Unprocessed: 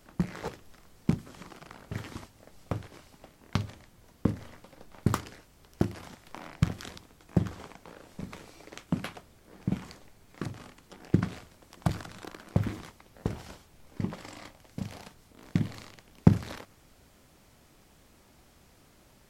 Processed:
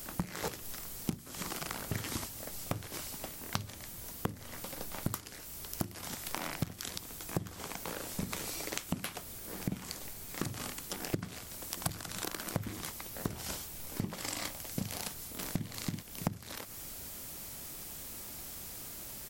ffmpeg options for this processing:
-filter_complex "[0:a]asplit=2[s0][s1];[s1]afade=t=in:st=15.06:d=0.01,afade=t=out:st=15.69:d=0.01,aecho=0:1:330|660:0.530884|0.0530884[s2];[s0][s2]amix=inputs=2:normalize=0,aemphasis=mode=production:type=75fm,acompressor=threshold=0.01:ratio=12,volume=2.51"

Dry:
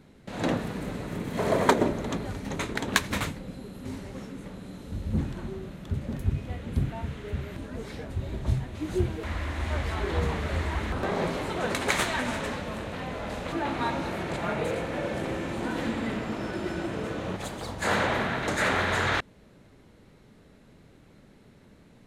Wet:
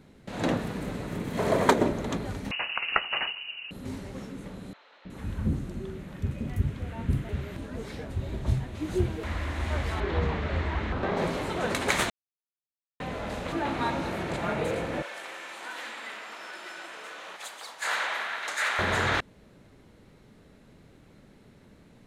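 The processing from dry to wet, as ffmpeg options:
-filter_complex "[0:a]asettb=1/sr,asplit=3[s0][s1][s2];[s0]atrim=end=2.514[s3];[s1]atrim=start=2.51:end=3.71,asetpts=PTS-STARTPTS,afade=t=in:d=0.004:c=qsin,afade=t=out:st=1.196:d=0.004:c=qsin,lowpass=f=2600:t=q:w=0.5098,lowpass=f=2600:t=q:w=0.6013,lowpass=f=2600:t=q:w=0.9,lowpass=f=2600:t=q:w=2.563,afreqshift=-3000[s4];[s2]atrim=start=3.706[s5];[s3][s4]acrossfade=d=0.004:c1=hsin:c2=qsin[s6];[s6][s5]acrossfade=d=0.004:c1=qsin:c2=hsin,asettb=1/sr,asplit=3[s7][s8][s9];[s7]atrim=end=4.734[s10];[s8]atrim=start=4.73:end=7.29,asetpts=PTS-STARTPTS,afade=t=in:d=0.004:c=qsin,afade=t=out:st=2.556:d=0.004:c=qsin,acrossover=split=700|4100[s11][s12][s13];[s11]adelay=320[s14];[s13]adelay=370[s15];[s14][s12][s15]amix=inputs=3:normalize=0,atrim=end_sample=112896[s16];[s9]atrim=start=7.286[s17];[s10][s16]acrossfade=d=0.004:c1=hsin:c2=qsin[s18];[s18][s17]acrossfade=d=0.004:c1=qsin:c2=hsin,asettb=1/sr,asplit=3[s19][s20][s21];[s19]atrim=end=10.004[s22];[s20]atrim=start=10:end=11.17,asetpts=PTS-STARTPTS,afade=t=in:d=0.004:c=qsin,afade=t=out:st=1.166:d=0.004:c=qsin,lowpass=4100[s23];[s21]atrim=start=11.166[s24];[s22][s23]acrossfade=d=0.004:c1=hsin:c2=qsin[s25];[s25][s24]acrossfade=d=0.004:c1=qsin:c2=hsin,asettb=1/sr,asplit=3[s26][s27][s28];[s26]atrim=end=15.024[s29];[s27]atrim=start=15.02:end=18.79,asetpts=PTS-STARTPTS,afade=t=in:d=0.004:c=qsin,afade=t=out:st=3.766:d=0.004:c=qsin,highpass=1100[s30];[s28]atrim=start=18.786[s31];[s29][s30]acrossfade=d=0.004:c1=hsin:c2=qsin[s32];[s32][s31]acrossfade=d=0.004:c1=qsin:c2=hsin,asplit=3[s33][s34][s35];[s33]atrim=end=12.1,asetpts=PTS-STARTPTS,afade=t=out:st=12.096:d=0.004:c=hsin[s36];[s34]atrim=start=12.1:end=13,asetpts=PTS-STARTPTS,volume=0[s37];[s35]atrim=start=13,asetpts=PTS-STARTPTS,afade=t=in:d=0.004:c=hsin[s38];[s36][s37][s38]concat=n=3:v=0:a=1"

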